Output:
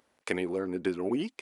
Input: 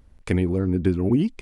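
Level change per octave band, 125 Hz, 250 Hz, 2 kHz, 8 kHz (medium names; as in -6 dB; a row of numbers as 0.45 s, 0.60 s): -21.0 dB, -10.5 dB, 0.0 dB, no reading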